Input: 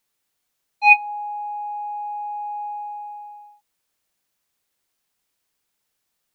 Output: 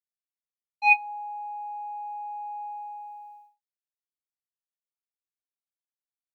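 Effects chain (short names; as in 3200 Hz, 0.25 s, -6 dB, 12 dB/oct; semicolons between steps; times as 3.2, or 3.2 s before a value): expander -40 dBFS; gain -6.5 dB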